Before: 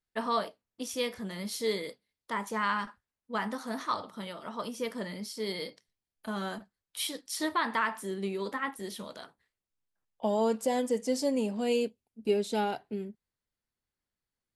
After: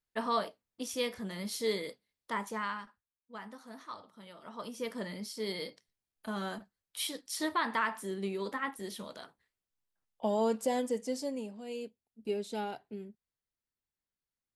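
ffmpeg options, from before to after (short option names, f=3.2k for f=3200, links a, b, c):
-af "volume=17dB,afade=t=out:st=2.36:d=0.5:silence=0.266073,afade=t=in:st=4.21:d=0.78:silence=0.281838,afade=t=out:st=10.7:d=0.93:silence=0.237137,afade=t=in:st=11.63:d=0.58:silence=0.421697"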